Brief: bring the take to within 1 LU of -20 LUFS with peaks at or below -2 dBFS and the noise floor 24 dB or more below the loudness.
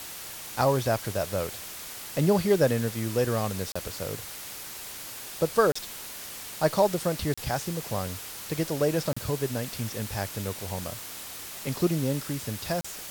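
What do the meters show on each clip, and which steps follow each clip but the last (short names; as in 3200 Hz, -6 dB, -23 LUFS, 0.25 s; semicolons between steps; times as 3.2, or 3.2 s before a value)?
dropouts 5; longest dropout 35 ms; noise floor -40 dBFS; noise floor target -53 dBFS; loudness -29.0 LUFS; peak -9.5 dBFS; loudness target -20.0 LUFS
-> interpolate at 3.72/5.72/7.34/9.13/12.81, 35 ms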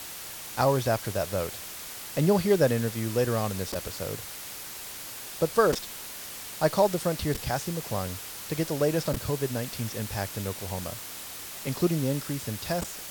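dropouts 0; noise floor -40 dBFS; noise floor target -53 dBFS
-> denoiser 13 dB, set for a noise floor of -40 dBFS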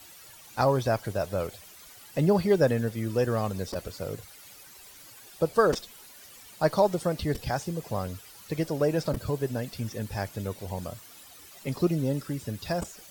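noise floor -50 dBFS; noise floor target -53 dBFS
-> denoiser 6 dB, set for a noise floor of -50 dBFS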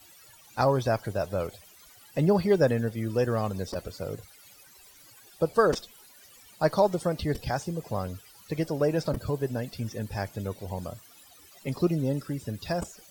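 noise floor -54 dBFS; loudness -29.0 LUFS; peak -9.5 dBFS; loudness target -20.0 LUFS
-> gain +9 dB; limiter -2 dBFS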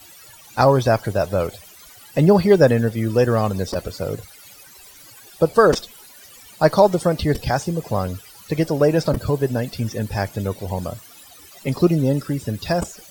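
loudness -20.0 LUFS; peak -2.0 dBFS; noise floor -45 dBFS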